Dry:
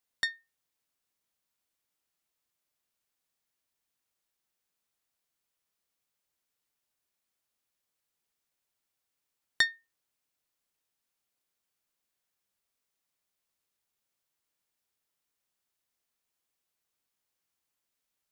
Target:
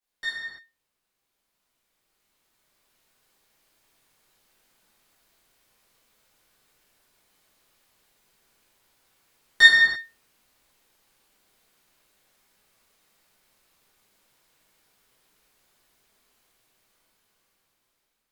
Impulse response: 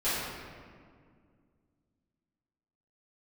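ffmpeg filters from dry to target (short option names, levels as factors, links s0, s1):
-filter_complex "[0:a]alimiter=limit=0.0794:level=0:latency=1,dynaudnorm=f=990:g=5:m=5.62[s0];[1:a]atrim=start_sample=2205,afade=t=out:st=0.37:d=0.01,atrim=end_sample=16758,asetrate=40131,aresample=44100[s1];[s0][s1]afir=irnorm=-1:irlink=0,volume=0.562"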